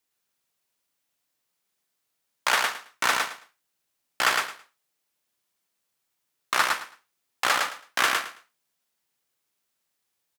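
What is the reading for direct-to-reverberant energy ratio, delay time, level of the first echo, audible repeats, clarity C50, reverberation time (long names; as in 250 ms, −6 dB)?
no reverb audible, 109 ms, −3.5 dB, 3, no reverb audible, no reverb audible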